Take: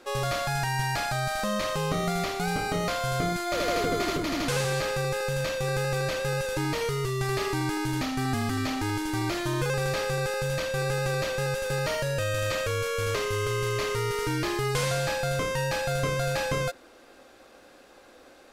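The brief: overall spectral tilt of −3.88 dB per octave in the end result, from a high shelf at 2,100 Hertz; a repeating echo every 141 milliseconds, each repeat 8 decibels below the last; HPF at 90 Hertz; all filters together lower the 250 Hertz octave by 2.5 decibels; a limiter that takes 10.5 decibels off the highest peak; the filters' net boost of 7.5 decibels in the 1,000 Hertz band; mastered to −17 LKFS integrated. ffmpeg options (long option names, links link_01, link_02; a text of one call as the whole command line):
ffmpeg -i in.wav -af "highpass=90,equalizer=frequency=250:width_type=o:gain=-4.5,equalizer=frequency=1000:width_type=o:gain=8.5,highshelf=frequency=2100:gain=7,alimiter=limit=-21dB:level=0:latency=1,aecho=1:1:141|282|423|564|705:0.398|0.159|0.0637|0.0255|0.0102,volume=11.5dB" out.wav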